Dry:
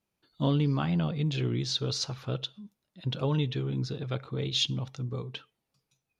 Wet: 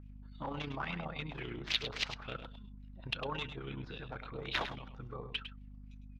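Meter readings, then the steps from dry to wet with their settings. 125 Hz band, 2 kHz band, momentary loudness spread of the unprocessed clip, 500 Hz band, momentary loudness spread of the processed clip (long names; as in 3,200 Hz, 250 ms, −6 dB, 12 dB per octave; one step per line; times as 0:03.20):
−16.0 dB, +3.5 dB, 9 LU, −9.0 dB, 17 LU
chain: spectral tilt +4 dB per octave
in parallel at −1 dB: downward compressor, threshold −40 dBFS, peak gain reduction 22 dB
on the sum: harmonic generator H 7 −12 dB, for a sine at −6.5 dBFS
mains hum 50 Hz, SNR 12 dB
amplitude modulation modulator 31 Hz, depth 35%
auto-filter low-pass sine 3.6 Hz 770–2,800 Hz
on a send: single-tap delay 104 ms −10 dB
on the sum: level −3 dB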